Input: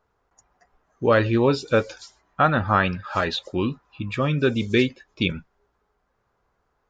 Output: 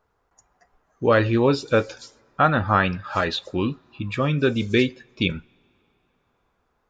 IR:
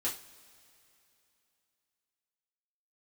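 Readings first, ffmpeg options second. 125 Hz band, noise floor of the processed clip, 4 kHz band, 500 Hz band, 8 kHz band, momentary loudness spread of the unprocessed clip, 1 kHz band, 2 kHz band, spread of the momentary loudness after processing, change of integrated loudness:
+0.5 dB, -70 dBFS, +0.5 dB, +0.5 dB, no reading, 11 LU, +0.5 dB, +0.5 dB, 11 LU, +0.5 dB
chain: -filter_complex "[0:a]asplit=2[s0][s1];[1:a]atrim=start_sample=2205[s2];[s1][s2]afir=irnorm=-1:irlink=0,volume=0.0891[s3];[s0][s3]amix=inputs=2:normalize=0"

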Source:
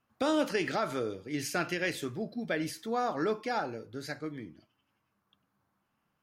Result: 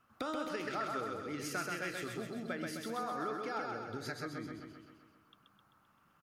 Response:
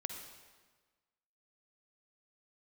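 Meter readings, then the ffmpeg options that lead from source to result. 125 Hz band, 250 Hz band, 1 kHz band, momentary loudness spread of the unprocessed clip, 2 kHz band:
-5.5 dB, -7.5 dB, -4.5 dB, 11 LU, -5.5 dB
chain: -af "acompressor=threshold=0.00501:ratio=4,equalizer=f=1300:w=3.7:g=10,aecho=1:1:130|260|390|520|650|780|910|1040:0.668|0.381|0.217|0.124|0.0706|0.0402|0.0229|0.0131,volume=1.58"

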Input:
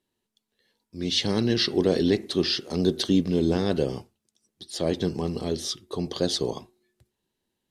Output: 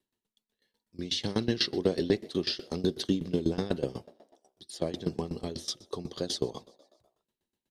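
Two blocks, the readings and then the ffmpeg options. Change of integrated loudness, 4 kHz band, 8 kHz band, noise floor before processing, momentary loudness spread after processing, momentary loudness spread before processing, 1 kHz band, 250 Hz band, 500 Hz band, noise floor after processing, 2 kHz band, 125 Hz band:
-6.5 dB, -6.0 dB, -6.0 dB, -82 dBFS, 11 LU, 10 LU, -6.0 dB, -6.5 dB, -6.0 dB, under -85 dBFS, -6.0 dB, -6.5 dB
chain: -filter_complex "[0:a]asplit=2[s0][s1];[s1]asplit=5[s2][s3][s4][s5][s6];[s2]adelay=127,afreqshift=50,volume=0.0631[s7];[s3]adelay=254,afreqshift=100,volume=0.0403[s8];[s4]adelay=381,afreqshift=150,volume=0.0257[s9];[s5]adelay=508,afreqshift=200,volume=0.0166[s10];[s6]adelay=635,afreqshift=250,volume=0.0106[s11];[s7][s8][s9][s10][s11]amix=inputs=5:normalize=0[s12];[s0][s12]amix=inputs=2:normalize=0,aeval=exprs='val(0)*pow(10,-19*if(lt(mod(8.1*n/s,1),2*abs(8.1)/1000),1-mod(8.1*n/s,1)/(2*abs(8.1)/1000),(mod(8.1*n/s,1)-2*abs(8.1)/1000)/(1-2*abs(8.1)/1000))/20)':c=same"

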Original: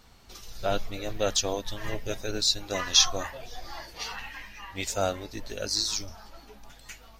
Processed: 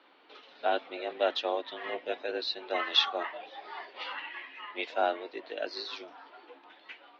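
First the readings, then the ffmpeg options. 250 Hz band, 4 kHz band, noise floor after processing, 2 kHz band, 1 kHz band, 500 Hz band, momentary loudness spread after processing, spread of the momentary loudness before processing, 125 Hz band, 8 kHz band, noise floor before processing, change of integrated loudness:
-5.5 dB, -5.0 dB, -58 dBFS, +0.5 dB, +2.0 dB, -0.5 dB, 21 LU, 19 LU, under -30 dB, -29.5 dB, -52 dBFS, -5.0 dB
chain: -af "highpass=f=240:t=q:w=0.5412,highpass=f=240:t=q:w=1.307,lowpass=f=3500:t=q:w=0.5176,lowpass=f=3500:t=q:w=0.7071,lowpass=f=3500:t=q:w=1.932,afreqshift=65"

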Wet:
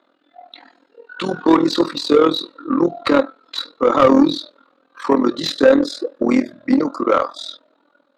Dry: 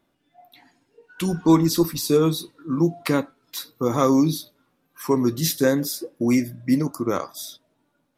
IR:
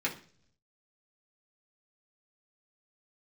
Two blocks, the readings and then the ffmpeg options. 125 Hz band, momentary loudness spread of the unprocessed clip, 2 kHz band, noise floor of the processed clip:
-8.5 dB, 15 LU, +7.0 dB, -62 dBFS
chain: -filter_complex "[0:a]highpass=f=170:w=0.5412,highpass=f=170:w=1.3066,equalizer=f=280:t=q:w=4:g=9,equalizer=f=530:t=q:w=4:g=10,equalizer=f=1300:t=q:w=4:g=8,equalizer=f=2300:t=q:w=4:g=-3,equalizer=f=4000:t=q:w=4:g=10,equalizer=f=5700:t=q:w=4:g=-8,lowpass=f=7400:w=0.5412,lowpass=f=7400:w=1.3066,tremolo=f=41:d=0.824,lowshelf=f=390:g=-6,asplit=2[s0][s1];[s1]highpass=f=720:p=1,volume=10,asoftclip=type=tanh:threshold=0.75[s2];[s0][s2]amix=inputs=2:normalize=0,lowpass=f=1500:p=1,volume=0.501,volume=1.19"

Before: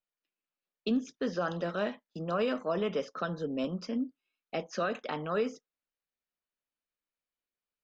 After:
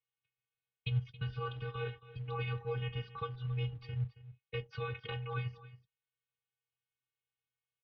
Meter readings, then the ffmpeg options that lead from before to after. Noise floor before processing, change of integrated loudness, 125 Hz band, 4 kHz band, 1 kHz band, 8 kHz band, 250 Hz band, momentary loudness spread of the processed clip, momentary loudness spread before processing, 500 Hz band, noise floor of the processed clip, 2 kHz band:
under -85 dBFS, -6.0 dB, +7.5 dB, -3.5 dB, -7.5 dB, no reading, -16.5 dB, 7 LU, 6 LU, -11.0 dB, under -85 dBFS, -5.0 dB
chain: -filter_complex "[0:a]equalizer=f=500:t=o:w=1:g=-10,equalizer=f=1000:t=o:w=1:g=-11,equalizer=f=2000:t=o:w=1:g=-5,asplit=2[s0][s1];[s1]acompressor=threshold=0.00631:ratio=12,volume=0.891[s2];[s0][s2]amix=inputs=2:normalize=0,afftfilt=real='hypot(re,im)*cos(PI*b)':imag='0':win_size=512:overlap=0.75,acrossover=split=320[s3][s4];[s3]acrusher=bits=5:mode=log:mix=0:aa=0.000001[s5];[s5][s4]amix=inputs=2:normalize=0,aecho=1:1:274:0.141,highpass=f=160:t=q:w=0.5412,highpass=f=160:t=q:w=1.307,lowpass=f=3500:t=q:w=0.5176,lowpass=f=3500:t=q:w=0.7071,lowpass=f=3500:t=q:w=1.932,afreqshift=-220,volume=1.68"

